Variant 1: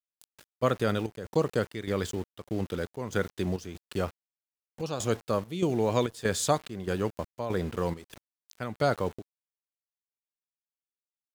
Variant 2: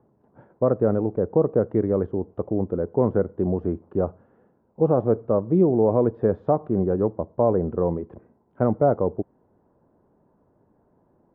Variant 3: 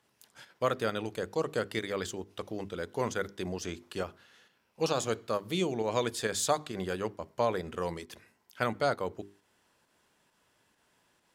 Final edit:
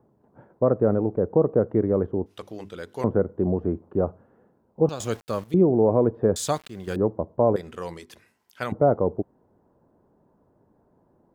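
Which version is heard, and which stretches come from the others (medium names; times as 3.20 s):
2
2.26–3.04 s: from 3
4.89–5.54 s: from 1
6.36–6.96 s: from 1
7.56–8.72 s: from 3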